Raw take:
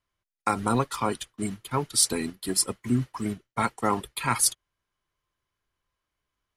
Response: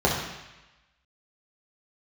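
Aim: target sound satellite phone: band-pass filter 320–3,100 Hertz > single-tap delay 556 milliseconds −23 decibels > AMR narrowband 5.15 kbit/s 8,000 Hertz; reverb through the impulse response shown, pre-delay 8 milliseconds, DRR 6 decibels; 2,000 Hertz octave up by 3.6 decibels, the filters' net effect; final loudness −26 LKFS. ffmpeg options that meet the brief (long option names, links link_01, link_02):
-filter_complex "[0:a]equalizer=frequency=2000:width_type=o:gain=5.5,asplit=2[link_01][link_02];[1:a]atrim=start_sample=2205,adelay=8[link_03];[link_02][link_03]afir=irnorm=-1:irlink=0,volume=-23dB[link_04];[link_01][link_04]amix=inputs=2:normalize=0,highpass=320,lowpass=3100,aecho=1:1:556:0.0708,volume=5.5dB" -ar 8000 -c:a libopencore_amrnb -b:a 5150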